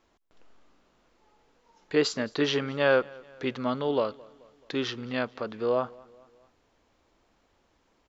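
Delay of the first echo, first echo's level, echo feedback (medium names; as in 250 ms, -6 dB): 216 ms, -24.0 dB, 52%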